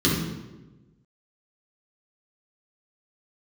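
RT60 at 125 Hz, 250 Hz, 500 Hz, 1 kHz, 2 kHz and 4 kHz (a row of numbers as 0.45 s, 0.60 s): 1.5 s, 1.3 s, 1.3 s, 1.0 s, 0.90 s, 0.80 s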